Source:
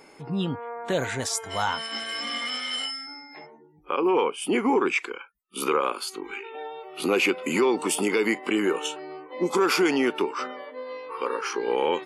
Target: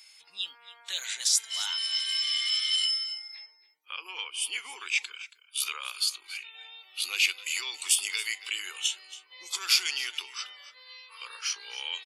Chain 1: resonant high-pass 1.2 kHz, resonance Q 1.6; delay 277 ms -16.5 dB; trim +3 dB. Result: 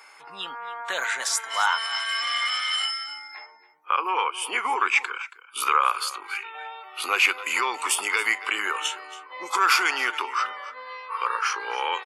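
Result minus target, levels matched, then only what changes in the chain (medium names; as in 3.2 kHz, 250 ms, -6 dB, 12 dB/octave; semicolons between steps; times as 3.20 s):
1 kHz band +19.0 dB
change: resonant high-pass 3.7 kHz, resonance Q 1.6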